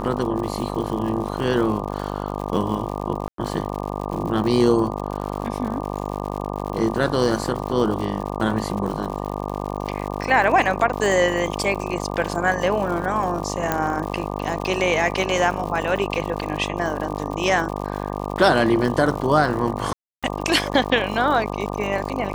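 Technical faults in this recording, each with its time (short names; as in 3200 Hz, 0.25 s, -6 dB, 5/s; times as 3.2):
buzz 50 Hz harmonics 24 -28 dBFS
crackle 120/s -29 dBFS
3.28–3.38 gap 0.103 s
13.72 pop -6 dBFS
19.93–20.23 gap 0.296 s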